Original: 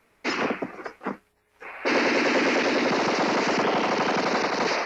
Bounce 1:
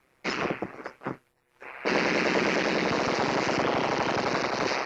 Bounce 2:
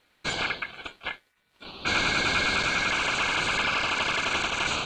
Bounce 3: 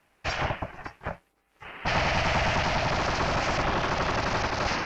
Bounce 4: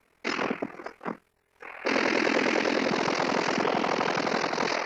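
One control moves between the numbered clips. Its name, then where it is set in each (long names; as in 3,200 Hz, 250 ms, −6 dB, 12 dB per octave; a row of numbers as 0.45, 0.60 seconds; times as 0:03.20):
ring modulation, frequency: 66, 1,900, 370, 21 Hertz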